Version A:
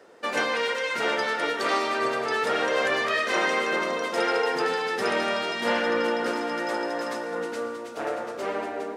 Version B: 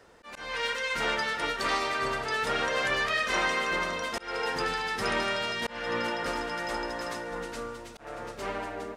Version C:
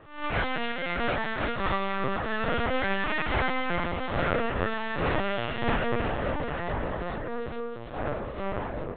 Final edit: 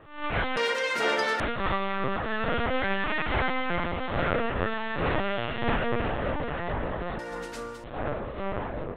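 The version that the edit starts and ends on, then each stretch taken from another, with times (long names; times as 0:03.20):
C
0:00.57–0:01.40: punch in from A
0:07.19–0:07.84: punch in from B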